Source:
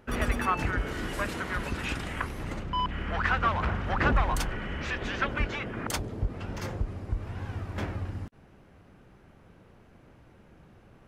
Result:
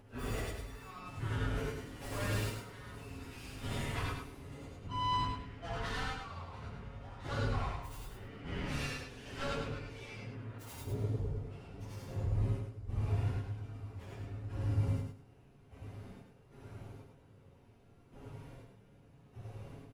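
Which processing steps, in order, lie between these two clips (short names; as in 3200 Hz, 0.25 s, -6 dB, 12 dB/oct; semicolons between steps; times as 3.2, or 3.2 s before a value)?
tracing distortion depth 0.27 ms; notches 60/120/180/240/300/360/420/480/540 Hz; comb 7.2 ms, depth 31%; reverse; compressor 6:1, threshold -38 dBFS, peak gain reduction 18 dB; reverse; step gate "x..x.x..." 67 bpm -12 dB; plain phase-vocoder stretch 1.8×; fifteen-band EQ 100 Hz +10 dB, 1600 Hz -6 dB, 10000 Hz +4 dB; on a send: feedback echo 0.104 s, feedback 23%, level -5 dB; on the sum: non-linear reverb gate 0.12 s rising, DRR -1.5 dB; gain +2.5 dB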